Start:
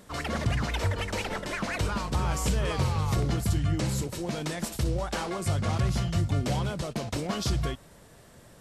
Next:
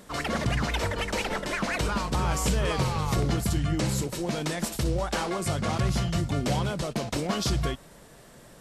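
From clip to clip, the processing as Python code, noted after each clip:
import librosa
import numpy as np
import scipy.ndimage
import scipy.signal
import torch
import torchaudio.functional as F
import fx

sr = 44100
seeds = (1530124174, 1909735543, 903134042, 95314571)

y = fx.peak_eq(x, sr, hz=88.0, db=-12.0, octaves=0.5)
y = y * librosa.db_to_amplitude(3.0)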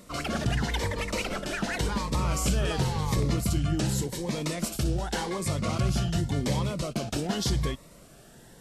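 y = fx.notch_cascade(x, sr, direction='rising', hz=0.89)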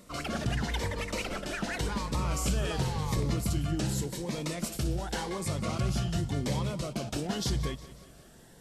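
y = fx.echo_feedback(x, sr, ms=181, feedback_pct=53, wet_db=-17.0)
y = y * librosa.db_to_amplitude(-3.5)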